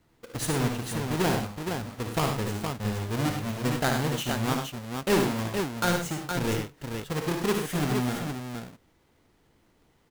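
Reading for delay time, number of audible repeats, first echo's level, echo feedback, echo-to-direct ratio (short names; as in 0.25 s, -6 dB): 57 ms, 3, -8.5 dB, no steady repeat, -1.5 dB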